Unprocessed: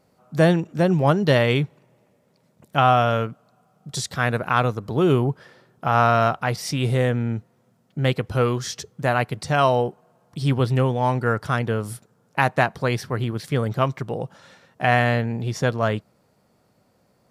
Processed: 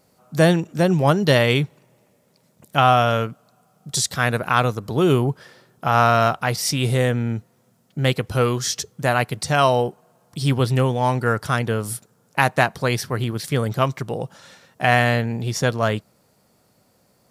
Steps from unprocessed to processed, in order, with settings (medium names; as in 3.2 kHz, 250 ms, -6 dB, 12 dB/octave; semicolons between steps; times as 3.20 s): treble shelf 4.3 kHz +10 dB; trim +1 dB